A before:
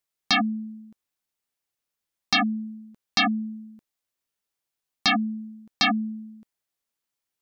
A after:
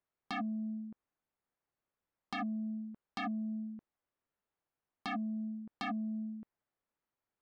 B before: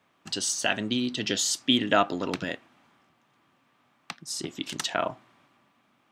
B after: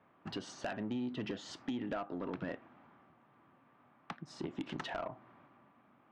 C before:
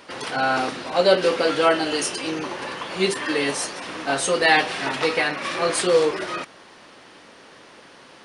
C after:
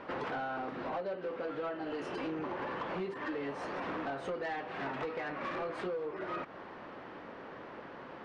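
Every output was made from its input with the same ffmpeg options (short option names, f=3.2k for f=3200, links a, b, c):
-af "lowpass=1.5k,acompressor=threshold=-34dB:ratio=16,asoftclip=type=tanh:threshold=-32.5dB,volume=2dB"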